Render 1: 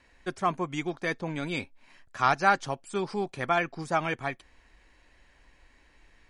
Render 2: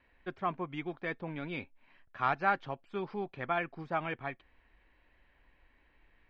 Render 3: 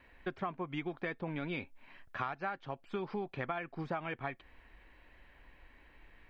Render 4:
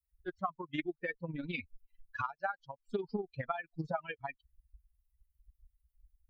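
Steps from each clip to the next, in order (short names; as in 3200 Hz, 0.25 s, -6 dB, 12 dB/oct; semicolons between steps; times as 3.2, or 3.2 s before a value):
LPF 3300 Hz 24 dB/oct; gain -6.5 dB
compressor 12:1, threshold -41 dBFS, peak gain reduction 19 dB; gain +7 dB
per-bin expansion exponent 3; tremolo 20 Hz, depth 64%; Doppler distortion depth 0.13 ms; gain +9 dB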